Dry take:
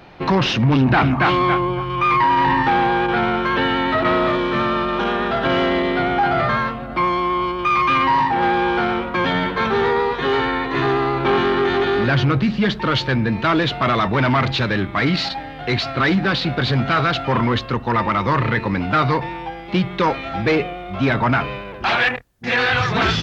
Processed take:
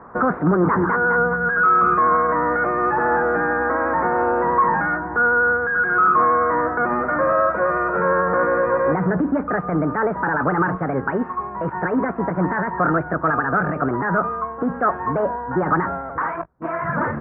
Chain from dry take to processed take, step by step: tilt EQ +3.5 dB/octave; speed mistake 33 rpm record played at 45 rpm; bass shelf 140 Hz +8.5 dB; peak limiter -13.5 dBFS, peak gain reduction 7 dB; steep low-pass 1.5 kHz 48 dB/octave; trim +6 dB

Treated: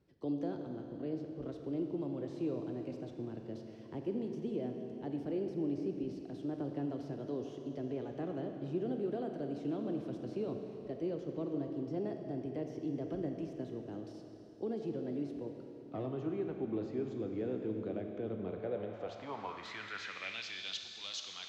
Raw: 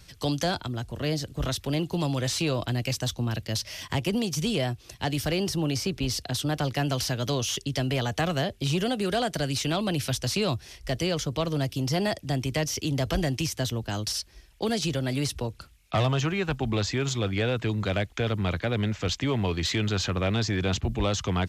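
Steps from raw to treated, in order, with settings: Schroeder reverb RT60 3.4 s, combs from 28 ms, DRR 3.5 dB; band-pass sweep 340 Hz -> 4.1 kHz, 18.43–20.85 s; trim -5 dB

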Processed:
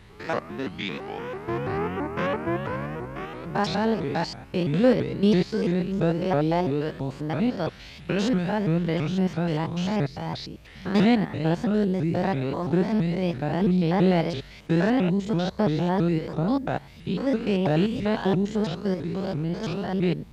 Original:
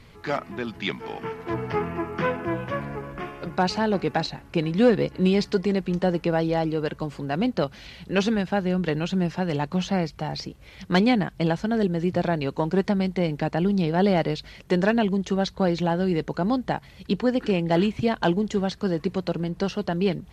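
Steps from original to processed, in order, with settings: spectrogram pixelated in time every 100 ms; vibrato with a chosen wave saw up 3 Hz, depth 250 cents; trim +1.5 dB

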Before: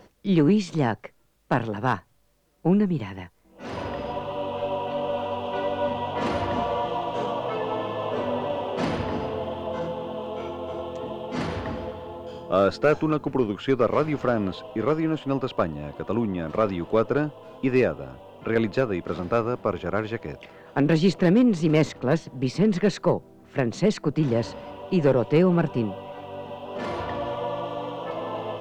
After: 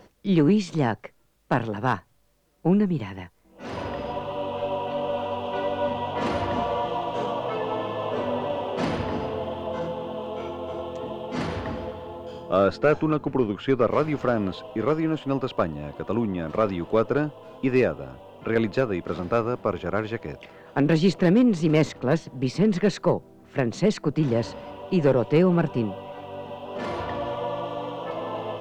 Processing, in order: 12.57–13.91 s: tone controls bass +1 dB, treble -5 dB

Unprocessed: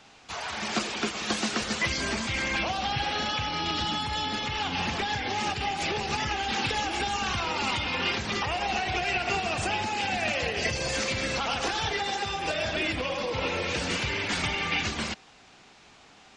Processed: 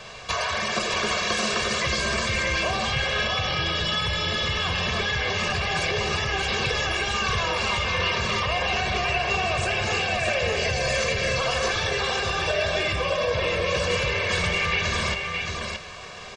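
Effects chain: treble shelf 5.7 kHz -4.5 dB; band-stop 3.1 kHz, Q 23; comb 1.8 ms, depth 86%; in parallel at -1 dB: compressor with a negative ratio -36 dBFS, ratio -0.5; on the sum: delay 623 ms -4.5 dB; plate-style reverb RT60 0.57 s, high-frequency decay 0.95×, DRR 11.5 dB

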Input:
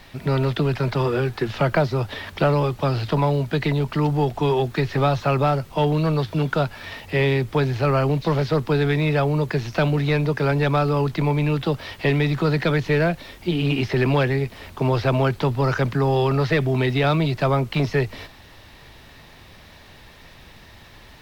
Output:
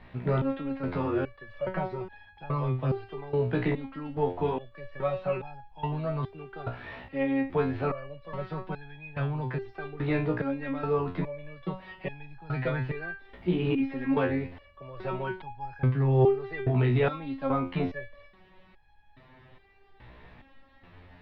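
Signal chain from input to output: distance through air 490 m; resonator arpeggio 2.4 Hz 61–830 Hz; trim +5 dB

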